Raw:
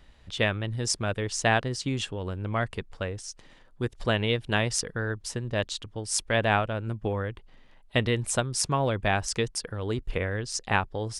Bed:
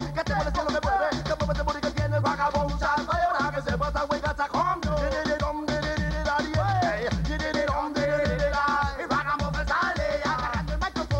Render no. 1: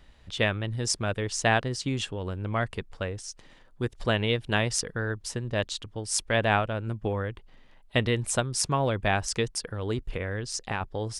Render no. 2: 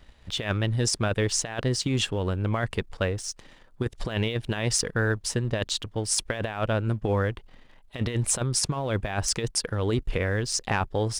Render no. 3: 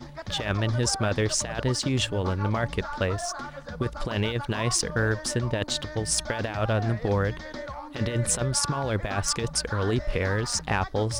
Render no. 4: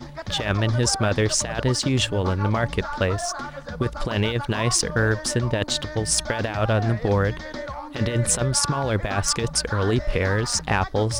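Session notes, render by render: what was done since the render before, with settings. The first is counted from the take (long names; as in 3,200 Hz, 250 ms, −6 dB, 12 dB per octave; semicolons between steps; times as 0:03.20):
0:09.99–0:10.81: downward compressor 3 to 1, threshold −27 dBFS
compressor whose output falls as the input rises −28 dBFS, ratio −0.5; leveller curve on the samples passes 1
mix in bed −11 dB
level +4 dB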